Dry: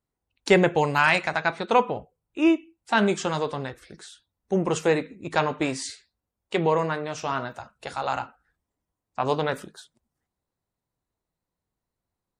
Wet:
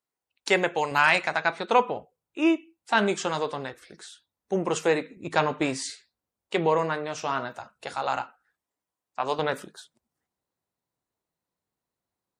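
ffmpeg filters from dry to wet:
-af "asetnsamples=n=441:p=0,asendcmd='0.91 highpass f 290;5.17 highpass f 94;5.78 highpass f 200;8.22 highpass f 630;9.39 highpass f 200',highpass=f=740:p=1"

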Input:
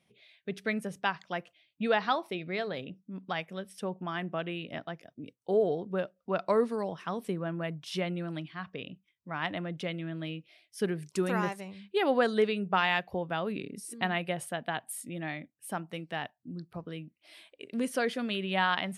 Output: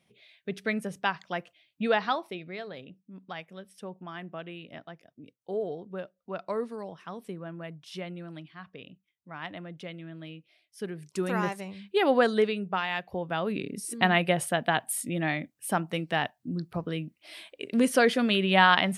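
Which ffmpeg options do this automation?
-af "volume=15,afade=t=out:st=1.91:d=0.65:silence=0.421697,afade=t=in:st=10.91:d=0.72:silence=0.354813,afade=t=out:st=12.23:d=0.64:silence=0.398107,afade=t=in:st=12.87:d=1.32:silence=0.237137"

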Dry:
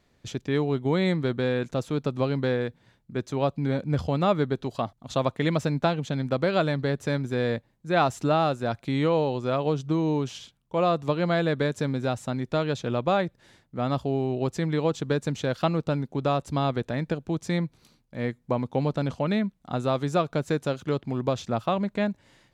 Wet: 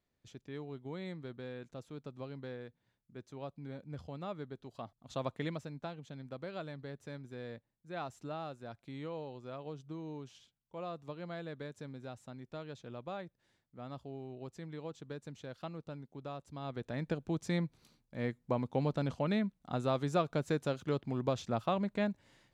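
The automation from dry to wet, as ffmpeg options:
-af "volume=1.12,afade=t=in:st=4.64:d=0.74:silence=0.398107,afade=t=out:st=5.38:d=0.25:silence=0.398107,afade=t=in:st=16.59:d=0.57:silence=0.251189"

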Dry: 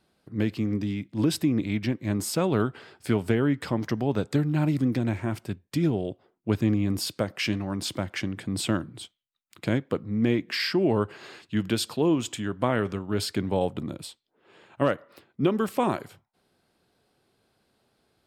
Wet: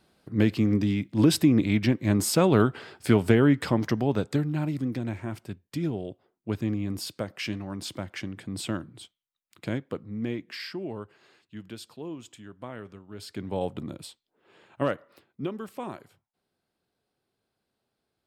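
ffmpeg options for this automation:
-af "volume=6.31,afade=t=out:st=3.52:d=1.15:silence=0.354813,afade=t=out:st=9.71:d=1.41:silence=0.316228,afade=t=in:st=13.18:d=0.51:silence=0.251189,afade=t=out:st=14.93:d=0.67:silence=0.375837"

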